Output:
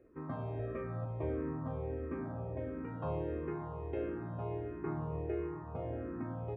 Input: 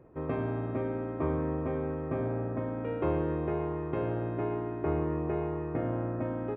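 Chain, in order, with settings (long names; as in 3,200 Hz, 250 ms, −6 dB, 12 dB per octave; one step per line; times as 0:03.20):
0:00.59–0:01.05: comb filter 1.7 ms, depth 98%
delay with a low-pass on its return 259 ms, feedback 80%, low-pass 470 Hz, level −10 dB
frequency shifter mixed with the dry sound −1.5 Hz
level −4.5 dB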